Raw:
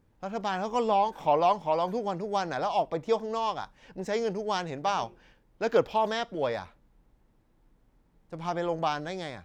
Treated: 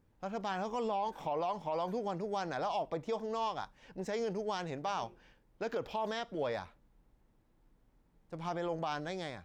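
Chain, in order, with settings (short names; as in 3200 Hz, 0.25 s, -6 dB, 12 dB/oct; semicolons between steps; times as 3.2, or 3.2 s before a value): limiter -22.5 dBFS, peak gain reduction 11.5 dB; gain -4 dB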